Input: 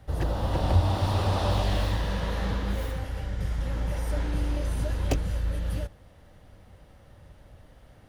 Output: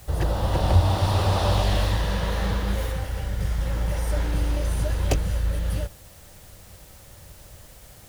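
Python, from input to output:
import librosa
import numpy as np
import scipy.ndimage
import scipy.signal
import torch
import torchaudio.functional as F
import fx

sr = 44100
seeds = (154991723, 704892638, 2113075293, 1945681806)

p1 = fx.peak_eq(x, sr, hz=260.0, db=-7.5, octaves=0.31)
p2 = fx.quant_dither(p1, sr, seeds[0], bits=8, dither='triangular')
p3 = p1 + F.gain(torch.from_numpy(p2), -5.0).numpy()
y = fx.peak_eq(p3, sr, hz=8800.0, db=3.0, octaves=1.7)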